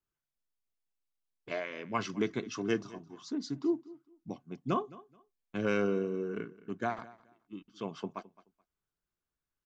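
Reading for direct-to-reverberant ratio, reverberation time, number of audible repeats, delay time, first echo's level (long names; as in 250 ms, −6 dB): no reverb audible, no reverb audible, 2, 214 ms, −20.0 dB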